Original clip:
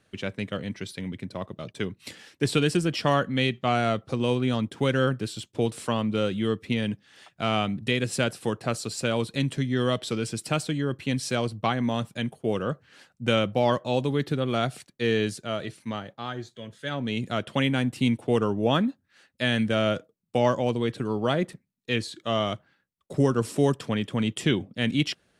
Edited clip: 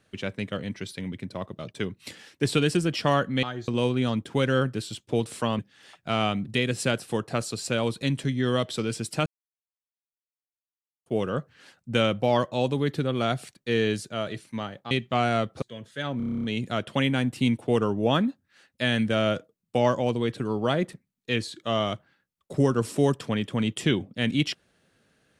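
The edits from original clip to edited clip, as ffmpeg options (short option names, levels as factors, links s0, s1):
-filter_complex "[0:a]asplit=17[s0][s1][s2][s3][s4][s5][s6][s7][s8][s9][s10][s11][s12][s13][s14][s15][s16];[s0]atrim=end=3.432[s17];[s1]atrim=start=16.238:end=16.492[s18];[s2]atrim=start=4.138:end=6.052[s19];[s3]atrim=start=6.918:end=10.59,asetpts=PTS-STARTPTS,afade=t=out:st=3.668:d=0.004:c=hsin[s20];[s4]atrim=start=10.59:end=12.39,asetpts=PTS-STARTPTS,volume=0[s21];[s5]atrim=start=12.39:end=16.242,asetpts=PTS-STARTPTS,afade=t=in:d=0.004:c=hsin[s22];[s6]atrim=start=3.428:end=4.142[s23];[s7]atrim=start=16.488:end=17.072[s24];[s8]atrim=start=17.038:end=17.072[s25];[s9]atrim=start=17.038:end=17.072[s26];[s10]atrim=start=17.038:end=17.072[s27];[s11]atrim=start=17.038:end=17.072[s28];[s12]atrim=start=17.038:end=17.072[s29];[s13]atrim=start=17.038:end=17.072[s30];[s14]atrim=start=17.038:end=17.072[s31];[s15]atrim=start=17.038:end=17.072[s32];[s16]atrim=start=17.038[s33];[s17][s18]acrossfade=d=0.004:c1=hsin:c2=hsin[s34];[s34][s19]acrossfade=d=0.004:c1=hsin:c2=hsin[s35];[s20][s21][s22]concat=n=3:v=0:a=1[s36];[s35][s36]acrossfade=d=0.004:c1=hsin:c2=hsin[s37];[s37][s23]acrossfade=d=0.004:c1=hsin:c2=hsin[s38];[s38][s24]acrossfade=d=0.004:c1=hsin:c2=hsin[s39];[s39][s25]acrossfade=d=0.004:c1=hsin:c2=hsin[s40];[s40][s26]acrossfade=d=0.004:c1=hsin:c2=hsin[s41];[s41][s27]acrossfade=d=0.004:c1=hsin:c2=hsin[s42];[s42][s28]acrossfade=d=0.004:c1=hsin:c2=hsin[s43];[s43][s29]acrossfade=d=0.004:c1=hsin:c2=hsin[s44];[s44][s30]acrossfade=d=0.004:c1=hsin:c2=hsin[s45];[s45][s31]acrossfade=d=0.004:c1=hsin:c2=hsin[s46];[s46][s32]acrossfade=d=0.004:c1=hsin:c2=hsin[s47];[s47][s33]acrossfade=d=0.004:c1=hsin:c2=hsin"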